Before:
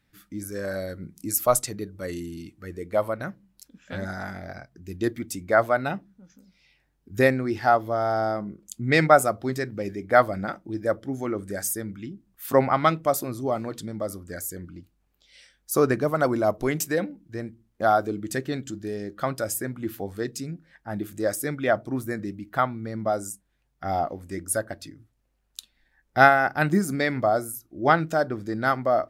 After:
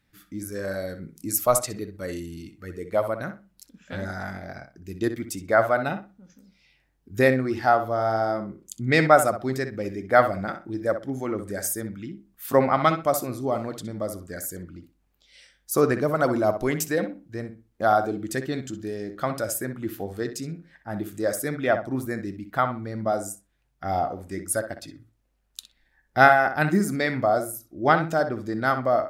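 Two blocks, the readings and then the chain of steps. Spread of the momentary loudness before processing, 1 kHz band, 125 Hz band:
17 LU, +0.5 dB, 0.0 dB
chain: tape echo 63 ms, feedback 23%, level -9 dB, low-pass 3100 Hz

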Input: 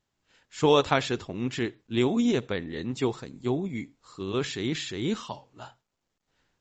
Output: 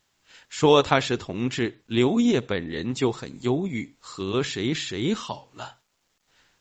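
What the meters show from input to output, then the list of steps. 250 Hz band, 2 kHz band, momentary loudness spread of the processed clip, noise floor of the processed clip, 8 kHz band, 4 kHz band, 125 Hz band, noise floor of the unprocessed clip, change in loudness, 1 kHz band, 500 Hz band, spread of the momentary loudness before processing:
+3.5 dB, +4.0 dB, 18 LU, -72 dBFS, n/a, +4.0 dB, +3.5 dB, -82 dBFS, +3.5 dB, +3.5 dB, +3.5 dB, 18 LU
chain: mismatched tape noise reduction encoder only; gain +3.5 dB

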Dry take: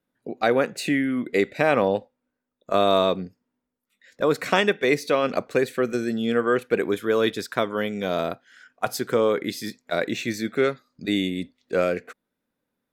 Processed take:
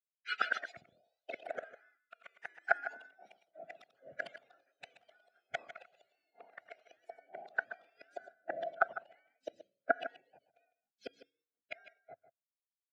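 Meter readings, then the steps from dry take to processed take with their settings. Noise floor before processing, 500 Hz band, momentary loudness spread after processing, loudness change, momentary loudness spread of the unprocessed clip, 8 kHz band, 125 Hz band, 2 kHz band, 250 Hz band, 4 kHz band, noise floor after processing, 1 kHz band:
-82 dBFS, -23.0 dB, 23 LU, -16.0 dB, 9 LU, under -25 dB, under -35 dB, -10.0 dB, -34.5 dB, -20.5 dB, under -85 dBFS, -14.0 dB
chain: spectrum mirrored in octaves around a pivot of 1000 Hz; recorder AGC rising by 5.8 dB/s; gate with hold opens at -49 dBFS; limiter -15.5 dBFS, peak gain reduction 6 dB; flipped gate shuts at -23 dBFS, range -36 dB; notch comb 910 Hz; echo 0.154 s -9.5 dB; echoes that change speed 0.172 s, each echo +3 st, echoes 3; double band-pass 1000 Hz, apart 1.1 oct; three-band expander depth 100%; gain +9 dB

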